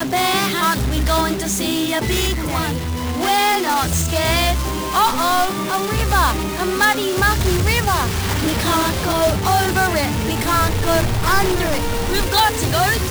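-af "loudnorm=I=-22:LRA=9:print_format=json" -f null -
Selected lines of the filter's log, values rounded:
"input_i" : "-17.7",
"input_tp" : "-3.5",
"input_lra" : "1.3",
"input_thresh" : "-27.7",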